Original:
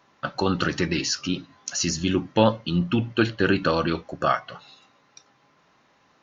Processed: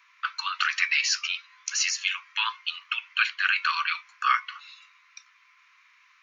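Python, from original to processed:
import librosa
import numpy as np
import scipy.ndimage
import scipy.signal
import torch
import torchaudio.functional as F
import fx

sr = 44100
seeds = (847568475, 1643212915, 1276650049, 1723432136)

y = scipy.signal.sosfilt(scipy.signal.butter(16, 1000.0, 'highpass', fs=sr, output='sos'), x)
y = fx.peak_eq(y, sr, hz=2300.0, db=13.5, octaves=0.43)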